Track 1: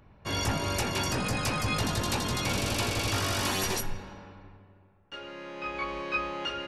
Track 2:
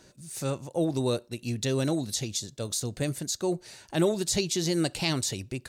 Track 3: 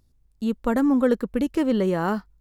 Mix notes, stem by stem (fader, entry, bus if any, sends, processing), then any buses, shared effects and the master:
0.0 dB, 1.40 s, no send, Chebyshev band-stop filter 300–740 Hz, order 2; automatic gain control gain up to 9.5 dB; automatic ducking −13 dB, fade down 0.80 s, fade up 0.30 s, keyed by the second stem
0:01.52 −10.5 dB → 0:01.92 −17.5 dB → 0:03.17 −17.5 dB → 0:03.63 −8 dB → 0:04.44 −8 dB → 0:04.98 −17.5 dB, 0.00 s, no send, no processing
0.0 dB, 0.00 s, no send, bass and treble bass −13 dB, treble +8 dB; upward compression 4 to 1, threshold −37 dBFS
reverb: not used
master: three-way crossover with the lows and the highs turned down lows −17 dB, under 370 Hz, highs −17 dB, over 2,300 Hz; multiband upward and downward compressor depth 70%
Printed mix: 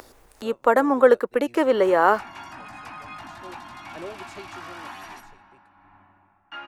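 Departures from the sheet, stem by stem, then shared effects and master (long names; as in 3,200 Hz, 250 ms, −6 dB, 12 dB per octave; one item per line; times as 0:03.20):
stem 3 0.0 dB → +10.5 dB
master: missing multiband upward and downward compressor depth 70%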